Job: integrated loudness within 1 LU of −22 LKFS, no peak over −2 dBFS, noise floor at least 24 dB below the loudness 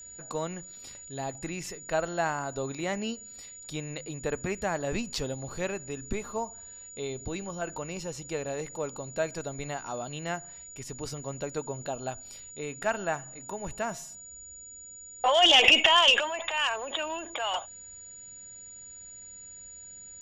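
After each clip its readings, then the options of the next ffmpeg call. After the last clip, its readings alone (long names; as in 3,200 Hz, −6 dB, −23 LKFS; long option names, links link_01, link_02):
interfering tone 6,900 Hz; level of the tone −44 dBFS; integrated loudness −28.5 LKFS; sample peak −6.0 dBFS; target loudness −22.0 LKFS
→ -af "bandreject=frequency=6900:width=30"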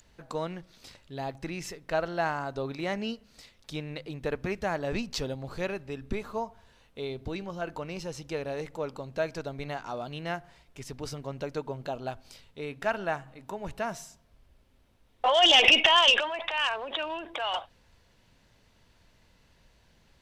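interfering tone none found; integrated loudness −28.5 LKFS; sample peak −6.0 dBFS; target loudness −22.0 LKFS
→ -af "volume=6.5dB,alimiter=limit=-2dB:level=0:latency=1"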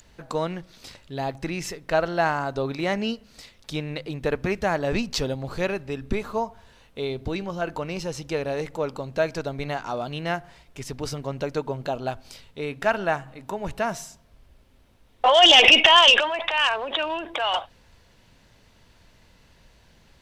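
integrated loudness −22.5 LKFS; sample peak −2.0 dBFS; background noise floor −57 dBFS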